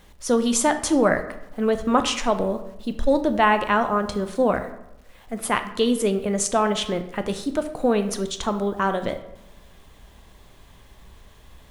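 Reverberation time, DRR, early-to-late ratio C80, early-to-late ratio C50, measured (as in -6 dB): 0.85 s, 8.5 dB, 14.0 dB, 11.5 dB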